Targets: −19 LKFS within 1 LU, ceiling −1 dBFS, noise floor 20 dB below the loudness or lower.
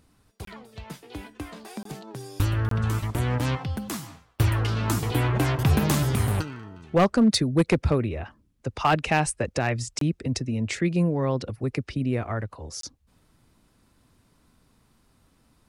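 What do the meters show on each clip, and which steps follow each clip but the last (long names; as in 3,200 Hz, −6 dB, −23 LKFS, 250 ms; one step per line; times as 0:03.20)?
share of clipped samples 0.3%; peaks flattened at −13.0 dBFS; number of dropouts 5; longest dropout 23 ms; integrated loudness −25.5 LKFS; sample peak −13.0 dBFS; target loudness −19.0 LKFS
→ clipped peaks rebuilt −13 dBFS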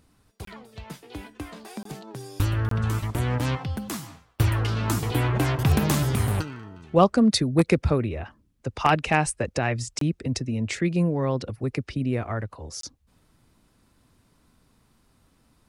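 share of clipped samples 0.0%; number of dropouts 5; longest dropout 23 ms
→ repair the gap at 0:00.45/0:01.83/0:02.69/0:09.99/0:12.81, 23 ms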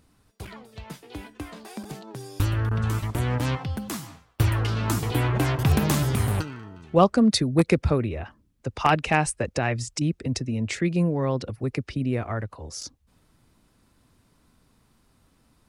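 number of dropouts 0; integrated loudness −25.0 LKFS; sample peak −4.0 dBFS; target loudness −19.0 LKFS
→ level +6 dB
brickwall limiter −1 dBFS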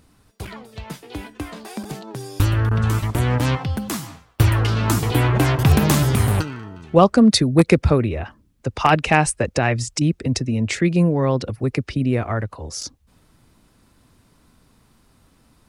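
integrated loudness −19.0 LKFS; sample peak −1.0 dBFS; background noise floor −59 dBFS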